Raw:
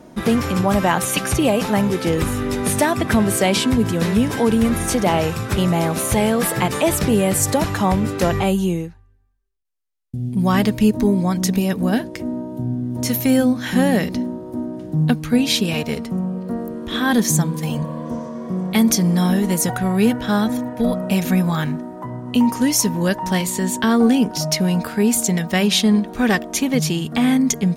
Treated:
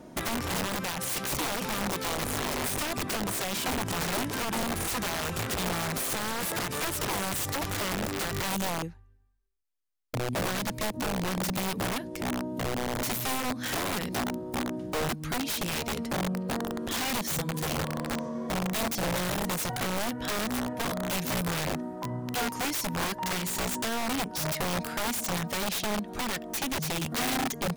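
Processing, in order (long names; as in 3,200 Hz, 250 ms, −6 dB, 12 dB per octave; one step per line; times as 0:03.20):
downward compressor 16 to 1, threshold −21 dBFS, peak gain reduction 12 dB
wrap-around overflow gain 20.5 dB
level −4.5 dB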